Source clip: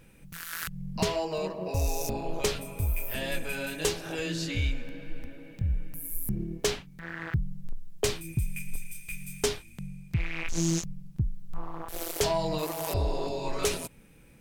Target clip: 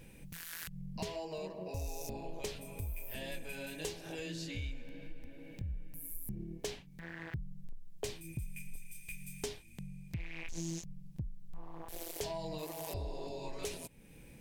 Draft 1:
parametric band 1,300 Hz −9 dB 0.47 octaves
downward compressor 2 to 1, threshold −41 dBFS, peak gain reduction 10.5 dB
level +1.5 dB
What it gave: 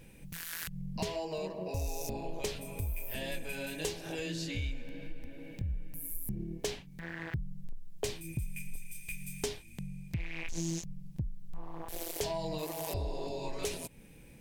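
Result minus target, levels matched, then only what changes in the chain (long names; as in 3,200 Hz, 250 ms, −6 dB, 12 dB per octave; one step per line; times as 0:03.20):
downward compressor: peak gain reduction −4.5 dB
change: downward compressor 2 to 1, threshold −50 dBFS, peak gain reduction 15 dB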